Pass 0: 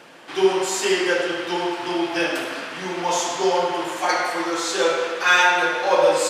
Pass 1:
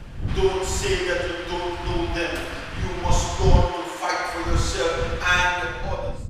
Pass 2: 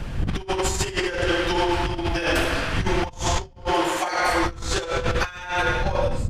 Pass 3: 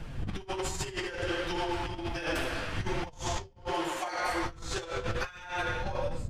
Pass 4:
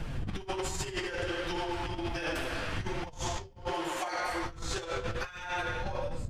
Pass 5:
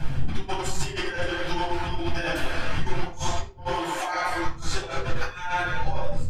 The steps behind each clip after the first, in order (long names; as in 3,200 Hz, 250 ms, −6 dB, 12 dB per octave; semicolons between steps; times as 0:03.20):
fade-out on the ending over 0.98 s; wind on the microphone 84 Hz −22 dBFS; level −3.5 dB
compressor whose output falls as the input rises −27 dBFS, ratio −0.5; level +3.5 dB
flanger 1.3 Hz, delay 5.9 ms, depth 4.6 ms, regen +57%; level −6 dB
downward compressor, threshold −35 dBFS, peak gain reduction 8.5 dB; level +4.5 dB
reverb reduction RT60 0.52 s; convolution reverb RT60 0.35 s, pre-delay 8 ms, DRR −2.5 dB